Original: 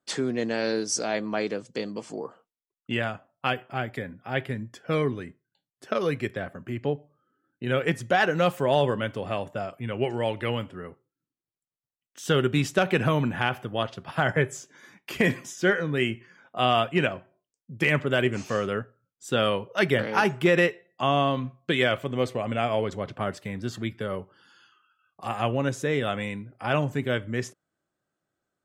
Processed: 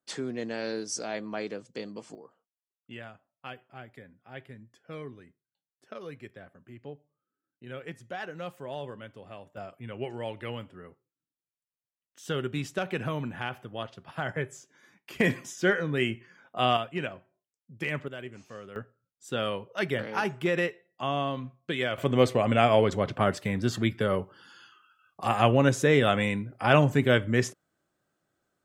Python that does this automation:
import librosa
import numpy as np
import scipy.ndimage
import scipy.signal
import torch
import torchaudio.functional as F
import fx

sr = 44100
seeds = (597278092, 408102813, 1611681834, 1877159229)

y = fx.gain(x, sr, db=fx.steps((0.0, -6.5), (2.15, -15.5), (9.57, -8.5), (15.2, -2.0), (16.77, -9.0), (18.08, -17.0), (18.76, -6.5), (21.98, 4.5)))